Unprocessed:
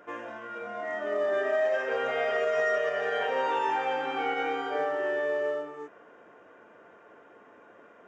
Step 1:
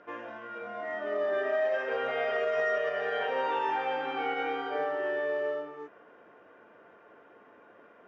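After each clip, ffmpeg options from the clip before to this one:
ffmpeg -i in.wav -af "lowpass=frequency=5200:width=0.5412,lowpass=frequency=5200:width=1.3066,volume=-2dB" out.wav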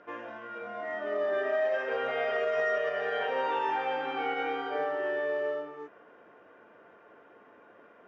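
ffmpeg -i in.wav -af anull out.wav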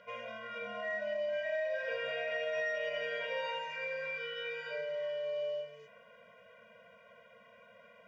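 ffmpeg -i in.wav -af "highshelf=frequency=1900:width_type=q:width=1.5:gain=7.5,acompressor=threshold=-31dB:ratio=10,afftfilt=real='re*eq(mod(floor(b*sr/1024/230),2),0)':imag='im*eq(mod(floor(b*sr/1024/230),2),0)':win_size=1024:overlap=0.75" out.wav

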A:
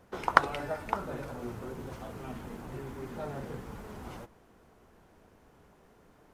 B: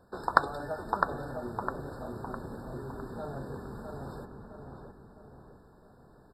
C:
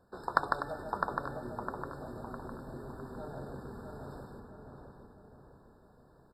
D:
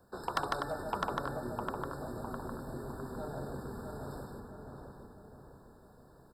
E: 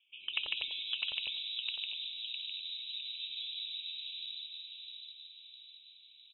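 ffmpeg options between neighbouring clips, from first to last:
ffmpeg -i in.wav -filter_complex "[0:a]asplit=2[link_01][link_02];[link_02]adelay=657,lowpass=frequency=1900:poles=1,volume=-4dB,asplit=2[link_03][link_04];[link_04]adelay=657,lowpass=frequency=1900:poles=1,volume=0.48,asplit=2[link_05][link_06];[link_06]adelay=657,lowpass=frequency=1900:poles=1,volume=0.48,asplit=2[link_07][link_08];[link_08]adelay=657,lowpass=frequency=1900:poles=1,volume=0.48,asplit=2[link_09][link_10];[link_10]adelay=657,lowpass=frequency=1900:poles=1,volume=0.48,asplit=2[link_11][link_12];[link_12]adelay=657,lowpass=frequency=1900:poles=1,volume=0.48[link_13];[link_03][link_05][link_07][link_09][link_11][link_13]amix=inputs=6:normalize=0[link_14];[link_01][link_14]amix=inputs=2:normalize=0,afftfilt=real='re*eq(mod(floor(b*sr/1024/1800),2),0)':imag='im*eq(mod(floor(b*sr/1024/1800),2),0)':win_size=1024:overlap=0.75,volume=-1dB" out.wav
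ffmpeg -i in.wav -af "aecho=1:1:151|248|884:0.631|0.266|0.119,volume=-5.5dB" out.wav
ffmpeg -i in.wav -filter_complex "[0:a]acrossover=split=280|880|5800[link_01][link_02][link_03][link_04];[link_04]acontrast=89[link_05];[link_01][link_02][link_03][link_05]amix=inputs=4:normalize=0,asoftclip=type=tanh:threshold=-24dB,volume=2.5dB" out.wav
ffmpeg -i in.wav -filter_complex "[0:a]acrossover=split=710|2900[link_01][link_02][link_03];[link_03]adelay=90[link_04];[link_01]adelay=200[link_05];[link_05][link_02][link_04]amix=inputs=3:normalize=0,lowpass=frequency=3400:width_type=q:width=0.5098,lowpass=frequency=3400:width_type=q:width=0.6013,lowpass=frequency=3400:width_type=q:width=0.9,lowpass=frequency=3400:width_type=q:width=2.563,afreqshift=-4000" out.wav

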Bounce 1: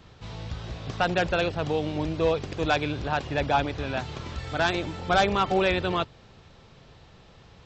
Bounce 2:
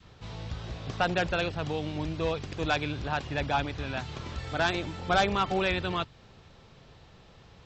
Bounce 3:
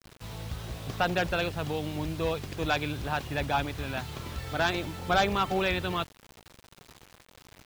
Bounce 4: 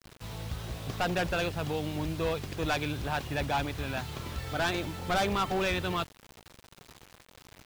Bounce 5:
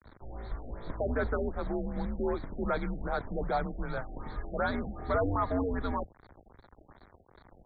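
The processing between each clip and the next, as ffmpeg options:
ffmpeg -i in.wav -af "adynamicequalizer=threshold=0.0126:dfrequency=500:dqfactor=0.85:tfrequency=500:tqfactor=0.85:attack=5:release=100:ratio=0.375:range=3:mode=cutabove:tftype=bell,volume=-2dB" out.wav
ffmpeg -i in.wav -af "acrusher=bits=7:mix=0:aa=0.000001" out.wav
ffmpeg -i in.wav -af "asoftclip=type=hard:threshold=-24dB" out.wav
ffmpeg -i in.wav -af "afreqshift=-110,asuperstop=centerf=2800:order=4:qfactor=1.3,afftfilt=real='re*lt(b*sr/1024,760*pow(4600/760,0.5+0.5*sin(2*PI*2.6*pts/sr)))':imag='im*lt(b*sr/1024,760*pow(4600/760,0.5+0.5*sin(2*PI*2.6*pts/sr)))':win_size=1024:overlap=0.75" out.wav

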